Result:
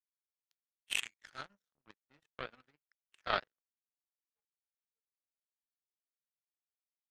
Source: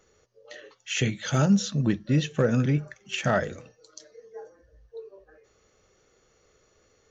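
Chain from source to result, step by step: band-pass sweep 6.1 kHz -> 1.2 kHz, 0.35–1.62 s; power-law waveshaper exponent 3; trim +6.5 dB

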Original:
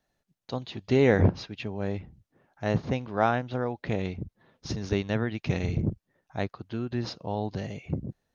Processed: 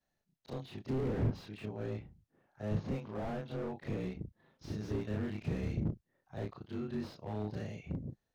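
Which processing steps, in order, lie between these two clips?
short-time spectra conjugated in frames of 76 ms; slew-rate limiter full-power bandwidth 12 Hz; trim -3.5 dB

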